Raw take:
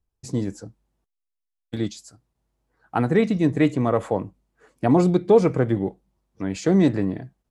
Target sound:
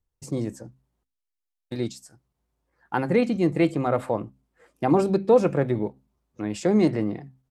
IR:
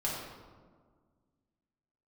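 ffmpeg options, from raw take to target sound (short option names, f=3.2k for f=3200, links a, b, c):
-af "bandreject=f=60:t=h:w=6,bandreject=f=120:t=h:w=6,bandreject=f=180:t=h:w=6,bandreject=f=240:t=h:w=6,asetrate=48091,aresample=44100,atempo=0.917004,volume=-2dB"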